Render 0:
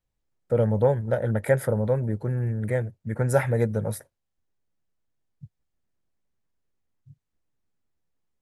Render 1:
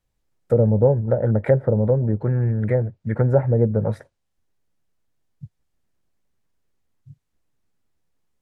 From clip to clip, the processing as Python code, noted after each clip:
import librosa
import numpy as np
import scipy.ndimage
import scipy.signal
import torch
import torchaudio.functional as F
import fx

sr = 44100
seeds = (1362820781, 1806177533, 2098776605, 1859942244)

y = fx.env_lowpass_down(x, sr, base_hz=580.0, full_db=-19.5)
y = y * librosa.db_to_amplitude(6.0)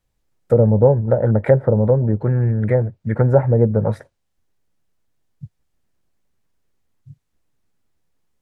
y = fx.dynamic_eq(x, sr, hz=1000.0, q=1.7, threshold_db=-34.0, ratio=4.0, max_db=4)
y = y * librosa.db_to_amplitude(3.0)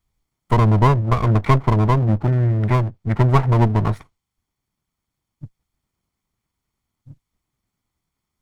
y = fx.lower_of_two(x, sr, delay_ms=0.91)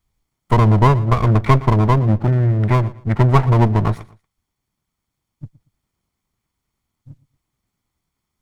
y = fx.echo_feedback(x, sr, ms=117, feedback_pct=28, wet_db=-19.5)
y = y * librosa.db_to_amplitude(2.0)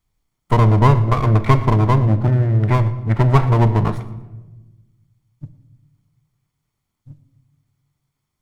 y = fx.room_shoebox(x, sr, seeds[0], volume_m3=610.0, walls='mixed', distance_m=0.4)
y = y * librosa.db_to_amplitude(-1.0)